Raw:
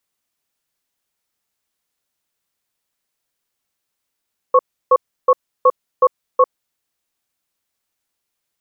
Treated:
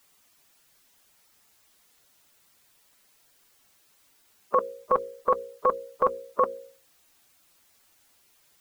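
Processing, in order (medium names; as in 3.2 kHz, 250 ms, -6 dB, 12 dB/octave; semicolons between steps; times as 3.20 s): coarse spectral quantiser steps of 15 dB; hum notches 60/120/180/240/300/360/420/480/540 Hz; spectrum-flattening compressor 2:1; trim -4.5 dB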